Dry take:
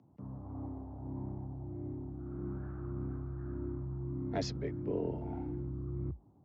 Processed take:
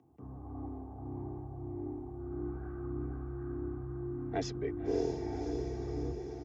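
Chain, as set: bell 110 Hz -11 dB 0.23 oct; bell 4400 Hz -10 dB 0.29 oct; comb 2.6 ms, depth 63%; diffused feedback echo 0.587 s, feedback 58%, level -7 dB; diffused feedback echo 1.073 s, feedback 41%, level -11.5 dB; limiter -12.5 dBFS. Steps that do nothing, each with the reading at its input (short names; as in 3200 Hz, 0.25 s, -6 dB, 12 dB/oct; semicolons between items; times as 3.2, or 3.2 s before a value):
limiter -12.5 dBFS: input peak -20.0 dBFS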